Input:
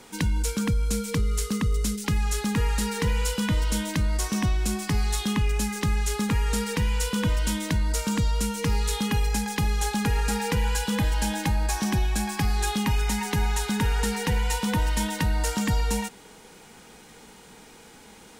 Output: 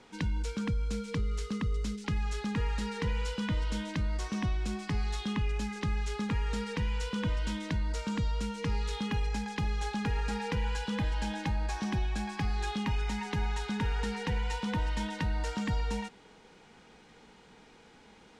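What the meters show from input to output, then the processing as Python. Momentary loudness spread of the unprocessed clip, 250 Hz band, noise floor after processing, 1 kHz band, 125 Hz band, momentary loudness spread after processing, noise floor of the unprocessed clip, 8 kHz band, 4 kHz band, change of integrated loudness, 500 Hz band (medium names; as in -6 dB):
1 LU, -7.0 dB, -57 dBFS, -7.0 dB, -7.0 dB, 2 LU, -49 dBFS, -17.0 dB, -9.0 dB, -7.5 dB, -7.0 dB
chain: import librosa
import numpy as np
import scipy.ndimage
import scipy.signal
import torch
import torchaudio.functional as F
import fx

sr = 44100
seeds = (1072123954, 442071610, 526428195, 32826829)

y = scipy.signal.sosfilt(scipy.signal.butter(2, 4500.0, 'lowpass', fs=sr, output='sos'), x)
y = y * librosa.db_to_amplitude(-7.0)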